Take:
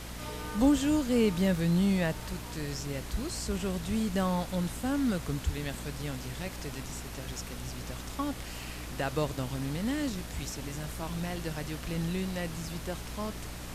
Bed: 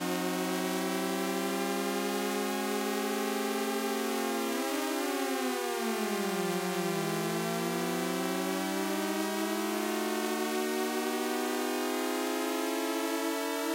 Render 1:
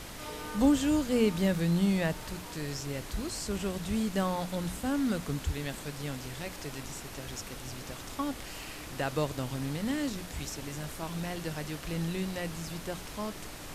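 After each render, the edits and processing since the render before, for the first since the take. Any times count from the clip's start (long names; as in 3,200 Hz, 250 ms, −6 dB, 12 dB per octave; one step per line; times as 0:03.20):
mains-hum notches 60/120/180/240 Hz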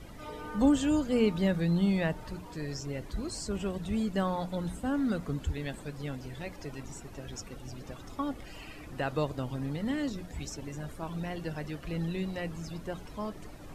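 broadband denoise 14 dB, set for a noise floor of −43 dBFS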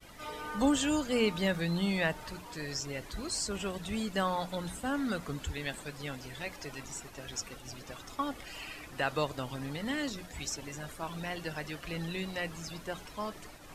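tilt shelving filter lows −6 dB, about 640 Hz
downward expander −45 dBFS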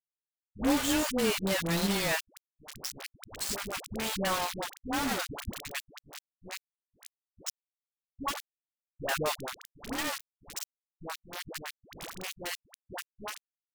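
bit reduction 5 bits
all-pass dispersion highs, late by 93 ms, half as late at 560 Hz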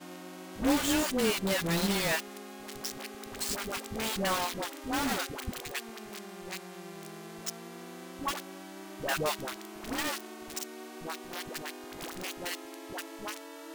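mix in bed −13.5 dB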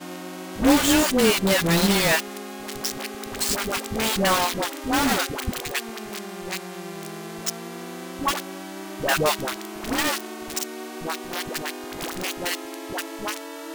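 level +9.5 dB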